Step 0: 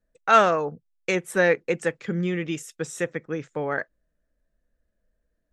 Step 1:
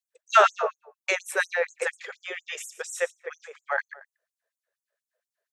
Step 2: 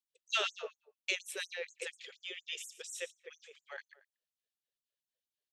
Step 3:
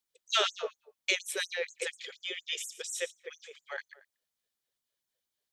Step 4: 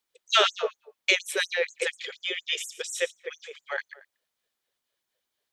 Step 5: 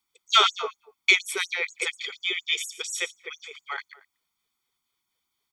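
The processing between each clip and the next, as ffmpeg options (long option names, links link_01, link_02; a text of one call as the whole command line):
ffmpeg -i in.wav -filter_complex "[0:a]asplit=2[link_01][link_02];[link_02]adelay=115,lowpass=frequency=2900:poles=1,volume=-4.5dB,asplit=2[link_03][link_04];[link_04]adelay=115,lowpass=frequency=2900:poles=1,volume=0.16,asplit=2[link_05][link_06];[link_06]adelay=115,lowpass=frequency=2900:poles=1,volume=0.16[link_07];[link_01][link_03][link_05][link_07]amix=inputs=4:normalize=0,afftfilt=real='re*gte(b*sr/1024,380*pow(6400/380,0.5+0.5*sin(2*PI*4.2*pts/sr)))':imag='im*gte(b*sr/1024,380*pow(6400/380,0.5+0.5*sin(2*PI*4.2*pts/sr)))':win_size=1024:overlap=0.75,volume=1.5dB" out.wav
ffmpeg -i in.wav -af "firequalizer=gain_entry='entry(260,0);entry(710,-21);entry(1500,-17);entry(3000,4);entry(6500,-4)':delay=0.05:min_phase=1,volume=-4dB" out.wav
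ffmpeg -i in.wav -af "bandreject=frequency=2700:width=11,volume=7dB" out.wav
ffmpeg -i in.wav -af "bass=frequency=250:gain=-6,treble=frequency=4000:gain=-6,volume=8dB" out.wav
ffmpeg -i in.wav -af "aecho=1:1:0.9:0.9" out.wav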